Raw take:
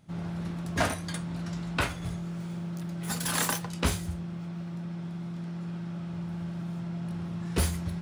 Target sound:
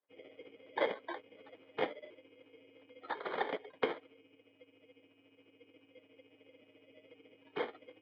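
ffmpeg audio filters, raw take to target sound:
-filter_complex "[0:a]afftdn=nr=26:nf=-39,acrossover=split=430|700|2000[a][b][c][d];[d]acompressor=threshold=-44dB:ratio=10[e];[a][b][c][e]amix=inputs=4:normalize=0,aexciter=amount=8:drive=8.7:freq=2.5k,asplit=3[f][g][h];[f]bandpass=f=530:t=q:w=8,volume=0dB[i];[g]bandpass=f=1.84k:t=q:w=8,volume=-6dB[j];[h]bandpass=f=2.48k:t=q:w=8,volume=-9dB[k];[i][j][k]amix=inputs=3:normalize=0,tremolo=f=14:d=0.55,acrusher=samples=16:mix=1:aa=0.000001,highpass=f=400:t=q:w=0.5412,highpass=f=400:t=q:w=1.307,lowpass=f=3.4k:t=q:w=0.5176,lowpass=f=3.4k:t=q:w=0.7071,lowpass=f=3.4k:t=q:w=1.932,afreqshift=-66,volume=10dB"

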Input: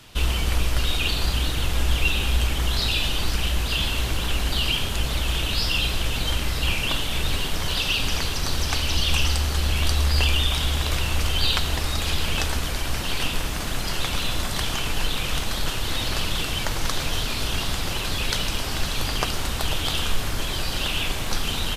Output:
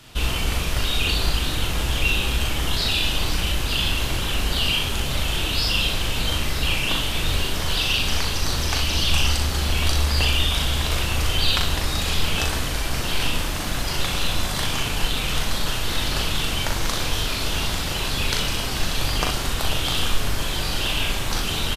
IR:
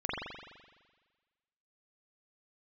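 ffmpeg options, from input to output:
-af "aecho=1:1:39|62:0.631|0.447"

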